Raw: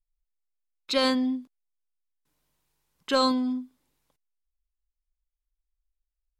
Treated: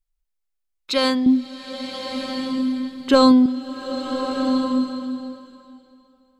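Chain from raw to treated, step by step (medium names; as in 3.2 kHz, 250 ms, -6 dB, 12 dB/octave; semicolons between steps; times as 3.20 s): 1.26–3.46 s: bass shelf 470 Hz +12 dB; swelling reverb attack 1310 ms, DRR 4.5 dB; trim +4 dB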